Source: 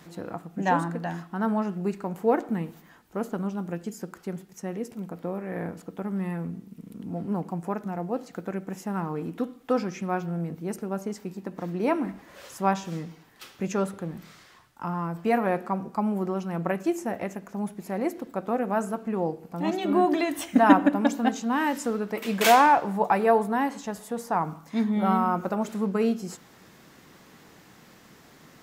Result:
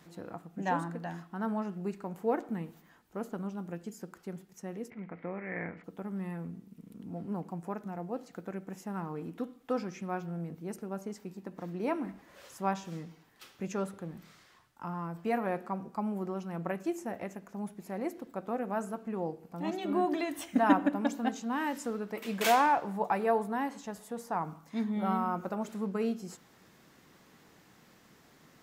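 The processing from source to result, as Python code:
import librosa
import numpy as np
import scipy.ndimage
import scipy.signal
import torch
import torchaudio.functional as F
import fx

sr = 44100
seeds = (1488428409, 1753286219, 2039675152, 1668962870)

y = fx.lowpass_res(x, sr, hz=2100.0, q=8.4, at=(4.9, 5.84))
y = F.gain(torch.from_numpy(y), -7.5).numpy()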